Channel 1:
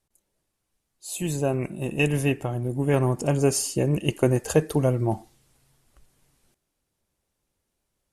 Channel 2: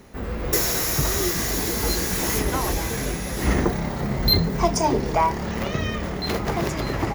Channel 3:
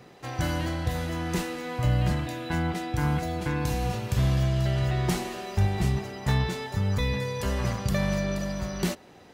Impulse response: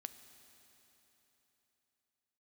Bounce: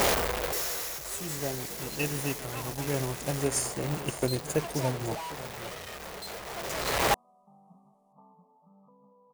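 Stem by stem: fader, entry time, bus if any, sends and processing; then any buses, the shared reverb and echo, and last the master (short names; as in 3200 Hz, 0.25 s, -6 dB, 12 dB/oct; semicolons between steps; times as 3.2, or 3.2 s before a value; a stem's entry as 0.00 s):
-7.0 dB, 0.00 s, no send, echo send -11 dB, bell 8500 Hz +7.5 dB 1.2 oct
+3.0 dB, 0.00 s, no send, no echo send, infinite clipping; resonant low shelf 370 Hz -8.5 dB, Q 1.5; auto duck -12 dB, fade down 1.05 s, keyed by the first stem
-14.0 dB, 1.90 s, no send, no echo send, FFT band-pass 140–1300 Hz; fixed phaser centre 870 Hz, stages 4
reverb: off
echo: echo 0.558 s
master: upward expander 1.5:1, over -38 dBFS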